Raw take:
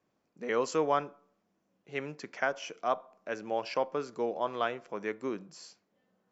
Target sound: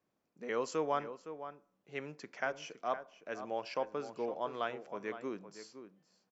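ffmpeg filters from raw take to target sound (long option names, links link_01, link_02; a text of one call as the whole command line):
ffmpeg -i in.wav -filter_complex "[0:a]asplit=2[link_01][link_02];[link_02]adelay=513.1,volume=-11dB,highshelf=frequency=4000:gain=-11.5[link_03];[link_01][link_03]amix=inputs=2:normalize=0,volume=-5.5dB" out.wav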